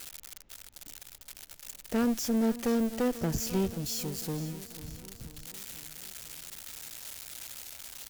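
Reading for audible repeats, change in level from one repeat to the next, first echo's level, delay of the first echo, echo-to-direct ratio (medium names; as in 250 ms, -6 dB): 4, -5.0 dB, -15.5 dB, 492 ms, -14.0 dB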